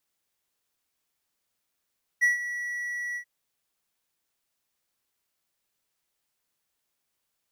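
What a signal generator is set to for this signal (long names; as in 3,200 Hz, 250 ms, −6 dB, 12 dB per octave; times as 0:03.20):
note with an ADSR envelope triangle 1,940 Hz, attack 24 ms, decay 138 ms, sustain −13 dB, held 0.95 s, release 83 ms −15 dBFS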